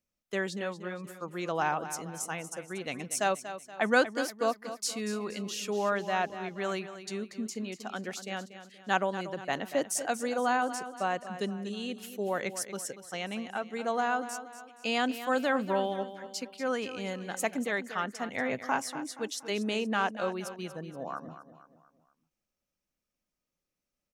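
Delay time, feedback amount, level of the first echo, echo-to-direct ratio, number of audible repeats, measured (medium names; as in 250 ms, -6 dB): 237 ms, 43%, -12.0 dB, -11.0 dB, 4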